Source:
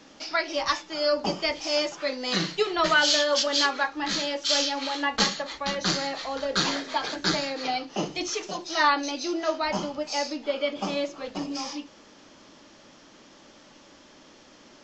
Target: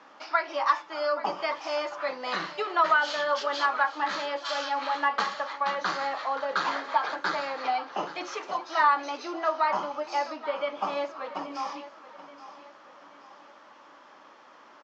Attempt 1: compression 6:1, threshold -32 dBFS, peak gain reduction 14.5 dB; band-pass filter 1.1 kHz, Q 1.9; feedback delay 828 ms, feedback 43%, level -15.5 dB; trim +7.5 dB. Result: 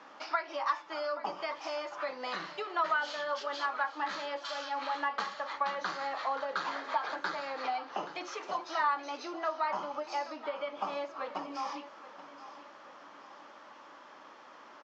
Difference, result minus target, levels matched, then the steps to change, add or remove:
compression: peak gain reduction +8 dB
change: compression 6:1, threshold -22.5 dBFS, peak gain reduction 7 dB

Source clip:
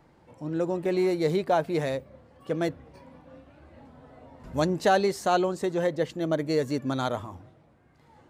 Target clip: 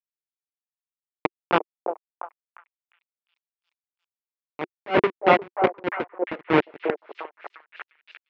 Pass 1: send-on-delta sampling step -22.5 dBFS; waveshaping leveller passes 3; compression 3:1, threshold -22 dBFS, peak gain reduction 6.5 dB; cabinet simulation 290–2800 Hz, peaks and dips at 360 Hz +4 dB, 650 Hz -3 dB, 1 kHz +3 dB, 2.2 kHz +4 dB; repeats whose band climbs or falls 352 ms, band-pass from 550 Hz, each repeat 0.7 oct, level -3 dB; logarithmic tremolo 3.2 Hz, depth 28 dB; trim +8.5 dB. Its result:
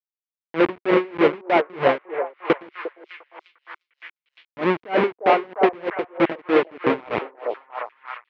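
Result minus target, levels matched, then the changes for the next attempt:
send-on-delta sampling: distortion -17 dB
change: send-on-delta sampling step -14.5 dBFS

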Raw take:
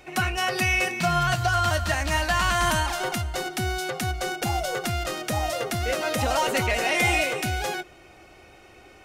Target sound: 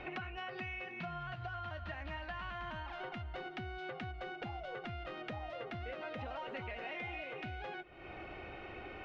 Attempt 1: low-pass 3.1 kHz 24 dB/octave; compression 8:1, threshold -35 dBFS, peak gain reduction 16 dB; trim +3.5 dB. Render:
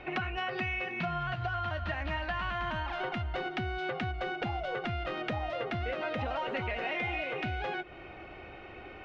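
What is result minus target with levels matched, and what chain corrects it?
compression: peak gain reduction -9 dB
low-pass 3.1 kHz 24 dB/octave; compression 8:1, threshold -45.5 dBFS, peak gain reduction 25.5 dB; trim +3.5 dB

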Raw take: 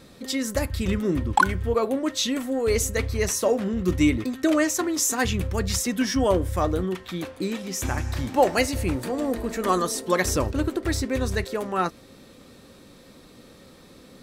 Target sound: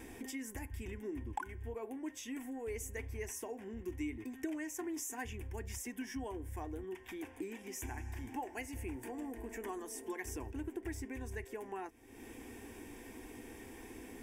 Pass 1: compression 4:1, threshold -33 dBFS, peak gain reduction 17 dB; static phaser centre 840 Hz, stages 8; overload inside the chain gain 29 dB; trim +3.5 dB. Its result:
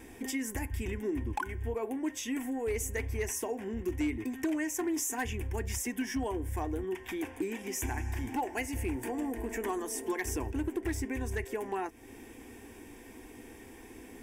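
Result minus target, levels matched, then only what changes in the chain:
compression: peak gain reduction -8.5 dB
change: compression 4:1, threshold -44.5 dBFS, peak gain reduction 25.5 dB

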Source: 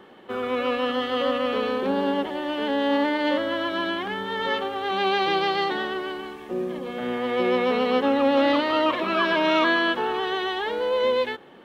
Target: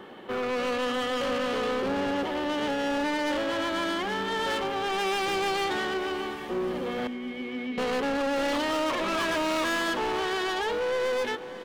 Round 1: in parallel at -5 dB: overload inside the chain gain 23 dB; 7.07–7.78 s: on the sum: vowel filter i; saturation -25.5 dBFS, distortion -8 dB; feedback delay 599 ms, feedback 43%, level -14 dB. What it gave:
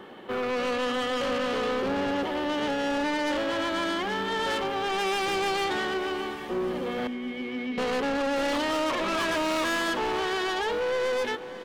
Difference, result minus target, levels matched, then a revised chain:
overload inside the chain: distortion -6 dB
in parallel at -5 dB: overload inside the chain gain 33.5 dB; 7.07–7.78 s: on the sum: vowel filter i; saturation -25.5 dBFS, distortion -9 dB; feedback delay 599 ms, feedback 43%, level -14 dB

